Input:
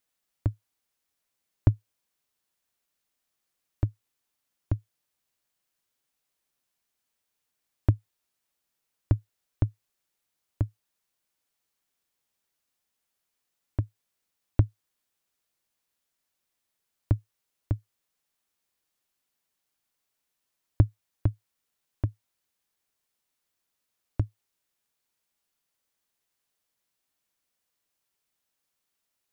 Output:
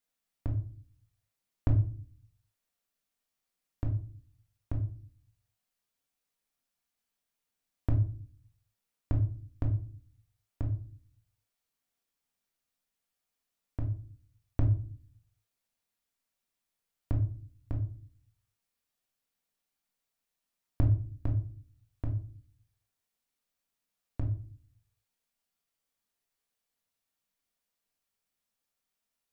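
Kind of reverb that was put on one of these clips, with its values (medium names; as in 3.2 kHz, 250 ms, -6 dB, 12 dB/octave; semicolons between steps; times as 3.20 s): simulated room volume 360 m³, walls furnished, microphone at 1.7 m; trim -7 dB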